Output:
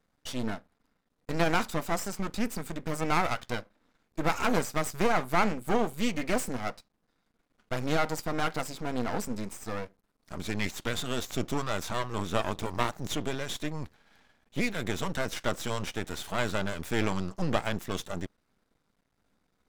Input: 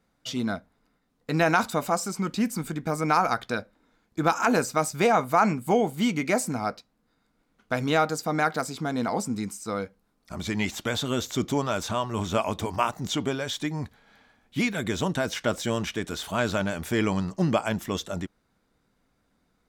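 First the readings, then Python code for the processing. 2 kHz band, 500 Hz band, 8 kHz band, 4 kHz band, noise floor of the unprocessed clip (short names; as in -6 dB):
-4.0 dB, -5.0 dB, -4.5 dB, -3.5 dB, -71 dBFS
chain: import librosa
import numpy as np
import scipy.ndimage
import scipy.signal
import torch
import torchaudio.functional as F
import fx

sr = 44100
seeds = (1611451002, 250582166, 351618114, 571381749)

y = np.maximum(x, 0.0)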